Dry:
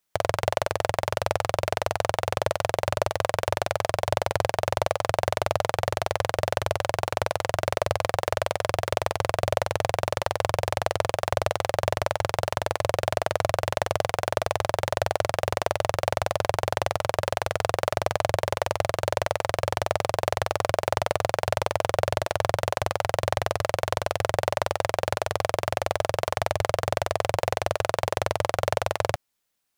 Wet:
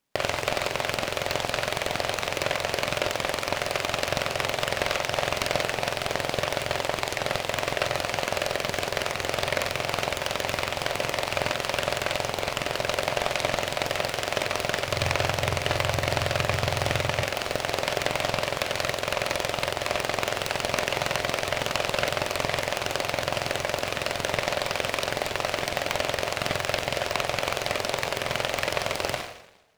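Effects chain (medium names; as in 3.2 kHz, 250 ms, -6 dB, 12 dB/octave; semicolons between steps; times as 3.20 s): 14.88–17.21 s: peaking EQ 95 Hz +12 dB 1.7 oct; two-slope reverb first 0.73 s, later 1.9 s, from -24 dB, DRR 8 dB; peak limiter -15.5 dBFS, peak gain reduction 10.5 dB; low-pass 2.3 kHz 6 dB/octave; resonant low shelf 140 Hz -7.5 dB, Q 1.5; delay time shaken by noise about 1.6 kHz, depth 0.23 ms; trim +6 dB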